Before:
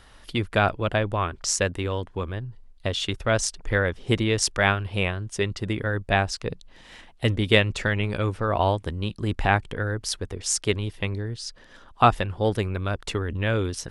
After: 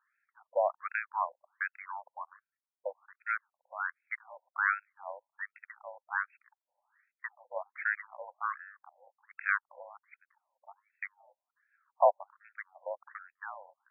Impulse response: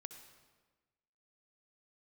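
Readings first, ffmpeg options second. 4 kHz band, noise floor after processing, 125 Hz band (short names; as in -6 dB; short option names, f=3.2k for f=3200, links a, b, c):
under -40 dB, under -85 dBFS, under -40 dB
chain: -af "afwtdn=0.0178,highpass=f=370:t=q:w=0.5412,highpass=f=370:t=q:w=1.307,lowpass=f=3.1k:t=q:w=0.5176,lowpass=f=3.1k:t=q:w=0.7071,lowpass=f=3.1k:t=q:w=1.932,afreqshift=-64,afftfilt=real='re*between(b*sr/1024,700*pow(1900/700,0.5+0.5*sin(2*PI*1.3*pts/sr))/1.41,700*pow(1900/700,0.5+0.5*sin(2*PI*1.3*pts/sr))*1.41)':imag='im*between(b*sr/1024,700*pow(1900/700,0.5+0.5*sin(2*PI*1.3*pts/sr))/1.41,700*pow(1900/700,0.5+0.5*sin(2*PI*1.3*pts/sr))*1.41)':win_size=1024:overlap=0.75,volume=-3dB"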